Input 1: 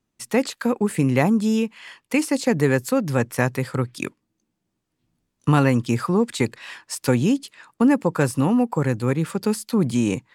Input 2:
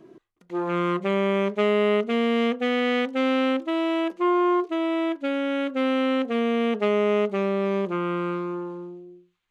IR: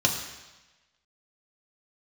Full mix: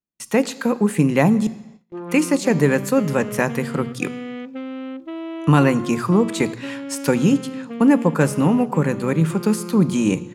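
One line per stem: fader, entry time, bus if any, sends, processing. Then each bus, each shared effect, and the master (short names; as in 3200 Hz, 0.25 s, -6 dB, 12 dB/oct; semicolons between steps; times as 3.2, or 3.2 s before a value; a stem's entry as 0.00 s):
+0.5 dB, 0.00 s, muted 1.47–1.97, send -21.5 dB, bell 160 Hz +4 dB 0.62 oct
-6.0 dB, 1.40 s, no send, ten-band EQ 125 Hz +11 dB, 250 Hz +5 dB, 8000 Hz -10 dB; compressor, threshold -22 dBFS, peak gain reduction 8.5 dB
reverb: on, RT60 1.1 s, pre-delay 3 ms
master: gate with hold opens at -34 dBFS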